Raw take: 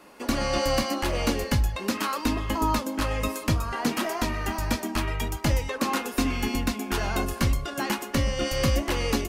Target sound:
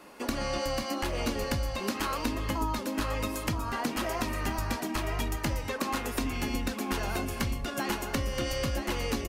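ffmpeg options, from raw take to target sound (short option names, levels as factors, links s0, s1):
-af "acompressor=threshold=0.0398:ratio=6,aecho=1:1:974:0.447"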